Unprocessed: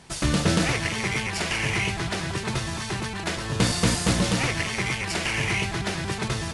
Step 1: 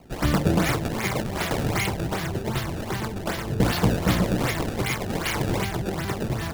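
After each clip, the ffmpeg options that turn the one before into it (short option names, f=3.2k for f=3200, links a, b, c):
-filter_complex "[0:a]bandreject=f=2.6k:w=12,acrossover=split=730[a][b];[b]acrusher=samples=24:mix=1:aa=0.000001:lfo=1:lforange=38.4:lforate=2.6[c];[a][c]amix=inputs=2:normalize=0,volume=1dB"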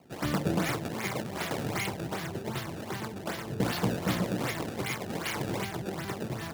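-af "highpass=120,volume=-6.5dB"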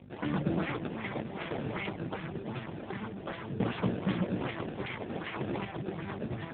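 -af "aeval=exprs='val(0)+0.00794*(sin(2*PI*50*n/s)+sin(2*PI*2*50*n/s)/2+sin(2*PI*3*50*n/s)/3+sin(2*PI*4*50*n/s)/4+sin(2*PI*5*50*n/s)/5)':c=same" -ar 8000 -c:a libopencore_amrnb -b:a 5900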